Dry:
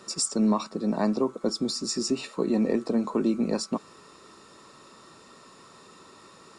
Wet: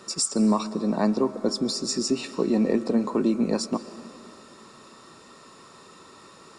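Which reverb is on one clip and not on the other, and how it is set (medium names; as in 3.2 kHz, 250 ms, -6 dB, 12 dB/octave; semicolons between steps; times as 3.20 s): algorithmic reverb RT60 2.9 s, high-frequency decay 0.75×, pre-delay 95 ms, DRR 14.5 dB; trim +2 dB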